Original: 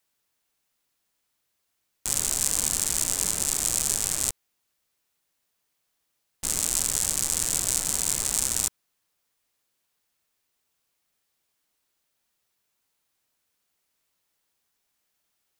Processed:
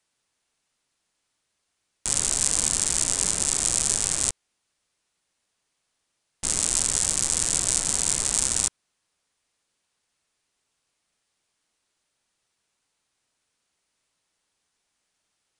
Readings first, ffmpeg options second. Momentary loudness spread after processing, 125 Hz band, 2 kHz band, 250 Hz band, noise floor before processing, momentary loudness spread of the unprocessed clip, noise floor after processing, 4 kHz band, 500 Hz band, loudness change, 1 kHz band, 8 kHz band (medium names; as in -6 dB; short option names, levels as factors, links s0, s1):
4 LU, +2.5 dB, +2.5 dB, +2.5 dB, -77 dBFS, 4 LU, -78 dBFS, +2.5 dB, +2.5 dB, +2.0 dB, +2.5 dB, +2.5 dB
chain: -af "aresample=22050,aresample=44100,volume=1.33"